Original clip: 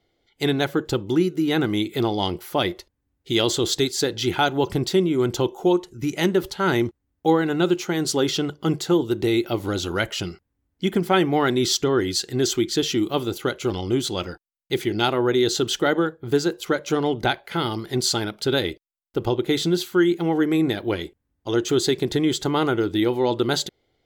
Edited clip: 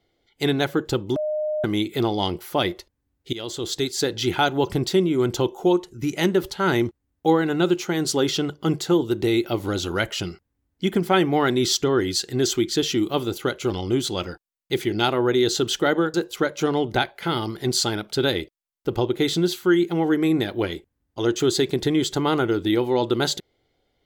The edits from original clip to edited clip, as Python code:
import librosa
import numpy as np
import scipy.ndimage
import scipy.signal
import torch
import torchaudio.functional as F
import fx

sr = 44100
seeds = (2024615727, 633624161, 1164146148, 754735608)

y = fx.edit(x, sr, fx.bleep(start_s=1.16, length_s=0.48, hz=611.0, db=-22.0),
    fx.fade_in_from(start_s=3.33, length_s=0.76, floor_db=-17.0),
    fx.cut(start_s=16.14, length_s=0.29), tone=tone)